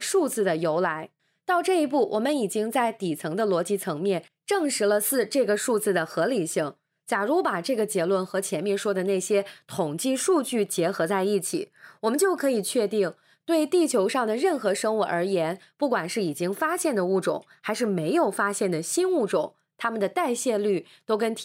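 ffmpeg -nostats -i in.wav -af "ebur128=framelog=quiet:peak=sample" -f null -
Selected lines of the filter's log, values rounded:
Integrated loudness:
  I:         -25.4 LUFS
  Threshold: -35.4 LUFS
Loudness range:
  LRA:         1.4 LU
  Threshold: -45.4 LUFS
  LRA low:   -26.0 LUFS
  LRA high:  -24.6 LUFS
Sample peak:
  Peak:      -12.6 dBFS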